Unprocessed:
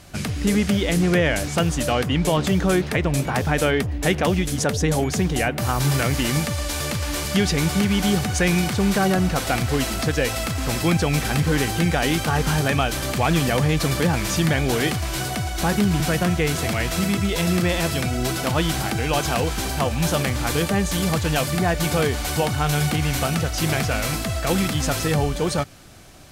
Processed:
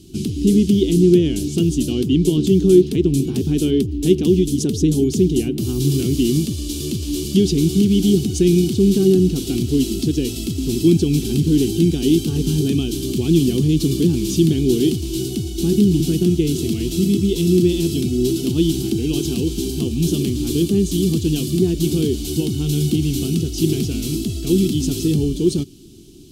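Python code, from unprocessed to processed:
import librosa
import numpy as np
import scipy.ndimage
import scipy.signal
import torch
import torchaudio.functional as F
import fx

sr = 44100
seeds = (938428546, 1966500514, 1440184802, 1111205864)

y = fx.curve_eq(x, sr, hz=(110.0, 380.0, 550.0, 1900.0, 3000.0), db=(0, 12, -22, -26, -1))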